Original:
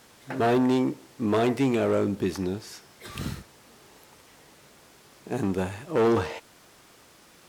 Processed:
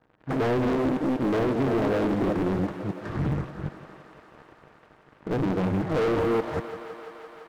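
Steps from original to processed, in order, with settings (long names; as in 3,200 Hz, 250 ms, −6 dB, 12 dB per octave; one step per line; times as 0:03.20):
delay that plays each chunk backwards 194 ms, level −5 dB
Butterworth low-pass 1,900 Hz 96 dB per octave
tilt shelving filter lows +5 dB, about 820 Hz
comb filter 6.4 ms, depth 34%
leveller curve on the samples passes 1
downward compressor, threshold −19 dBFS, peak gain reduction 8.5 dB
leveller curve on the samples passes 3
on a send: feedback echo with a high-pass in the loop 170 ms, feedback 84%, high-pass 230 Hz, level −11.5 dB
on the sum: highs frequency-modulated by the lows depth 0.71 ms
level −7.5 dB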